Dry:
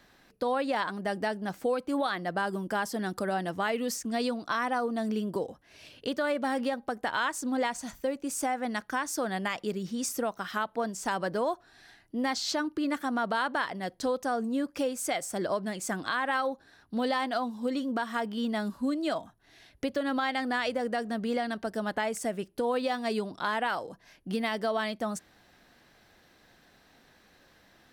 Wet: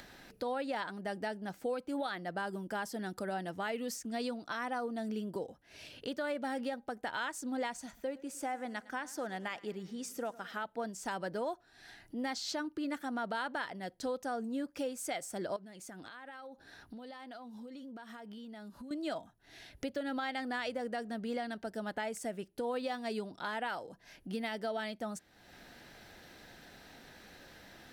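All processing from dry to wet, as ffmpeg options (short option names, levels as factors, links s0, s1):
-filter_complex "[0:a]asettb=1/sr,asplit=3[s0][s1][s2];[s0]atrim=end=7.864[s3];[s1]atrim=start=7.86:end=10.65,asetpts=PTS-STARTPTS,afade=t=in:d=0.004:c=qsin,afade=t=out:st=2.786:d=0.004:c=qsin,bass=f=250:g=-4,treble=f=4000:g=-5,aecho=1:1:109|218|327|436|545:0.1|0.057|0.0325|0.0185|0.0106,atrim=end_sample=123039[s4];[s2]atrim=start=10.646[s5];[s3][s4]acrossfade=d=0.004:c1=hsin:c2=qsin[s6];[s6][s5]acrossfade=d=0.004:c1=qsin:c2=hsin,asettb=1/sr,asplit=3[s7][s8][s9];[s7]atrim=end=15.564[s10];[s8]atrim=start=15.56:end=18.91,asetpts=PTS-STARTPTS,afade=t=in:d=0.004:c=qsin,afade=t=out:st=3.346:d=0.004:c=qsin,acompressor=threshold=0.00708:ratio=4:attack=3.2:release=140:knee=1:detection=peak,bandreject=f=7700:w=12[s11];[s9]atrim=start=18.906[s12];[s10][s11]acrossfade=d=0.004:c1=hsin:c2=qsin[s13];[s13][s12]acrossfade=d=0.004:c1=qsin:c2=hsin,acompressor=mode=upward:threshold=0.0178:ratio=2.5,bandreject=f=1100:w=7.6,volume=0.447"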